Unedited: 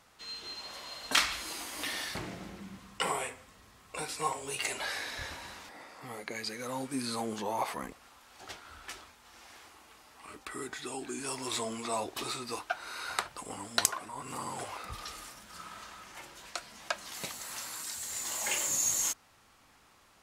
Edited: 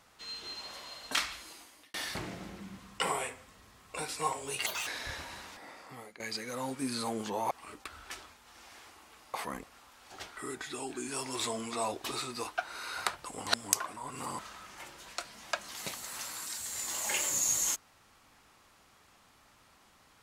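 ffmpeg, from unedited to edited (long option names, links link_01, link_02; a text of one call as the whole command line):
ffmpeg -i in.wav -filter_complex "[0:a]asplit=12[link_01][link_02][link_03][link_04][link_05][link_06][link_07][link_08][link_09][link_10][link_11][link_12];[link_01]atrim=end=1.94,asetpts=PTS-STARTPTS,afade=type=out:start_time=0.6:duration=1.34[link_13];[link_02]atrim=start=1.94:end=4.664,asetpts=PTS-STARTPTS,afade=type=in:duration=0.004:curve=hsin[link_14];[link_03]atrim=start=4.66:end=4.99,asetpts=PTS-STARTPTS,asetrate=69678,aresample=44100[link_15];[link_04]atrim=start=4.986:end=6.32,asetpts=PTS-STARTPTS,afade=type=out:start_time=0.944:duration=0.39:silence=0.149624[link_16];[link_05]atrim=start=6.32:end=7.632,asetpts=PTS-STARTPTS,afade=type=in:duration=0.004:curve=hsin:silence=0.149624[link_17];[link_06]atrim=start=10.118:end=10.492[link_18];[link_07]atrim=start=8.658:end=10.122[link_19];[link_08]atrim=start=7.628:end=8.662[link_20];[link_09]atrim=start=10.488:end=13.592[link_21];[link_10]atrim=start=13.588:end=13.852,asetpts=PTS-STARTPTS,areverse[link_22];[link_11]atrim=start=13.848:end=14.512[link_23];[link_12]atrim=start=15.758[link_24];[link_13][link_14]concat=n=2:v=0:a=1[link_25];[link_25][link_15]acrossfade=duration=0.004:curve1=hsin:curve2=hsin[link_26];[link_16][link_17]concat=n=2:v=0:a=1[link_27];[link_26][link_27]acrossfade=duration=0.004:curve1=hsin:curve2=hsin[link_28];[link_28][link_18]acrossfade=duration=0.004:curve1=hsin:curve2=hsin[link_29];[link_29][link_19]acrossfade=duration=0.004:curve1=hsin:curve2=hsin[link_30];[link_30][link_20]acrossfade=duration=0.004:curve1=hsin:curve2=hsin[link_31];[link_31][link_21]acrossfade=duration=0.004:curve1=hsin:curve2=hsin[link_32];[link_32][link_22]acrossfade=duration=0.004:curve1=hsin:curve2=hsin[link_33];[link_33][link_23]acrossfade=duration=0.004:curve1=hsin:curve2=hsin[link_34];[link_34][link_24]acrossfade=duration=0.004:curve1=hsin:curve2=hsin" out.wav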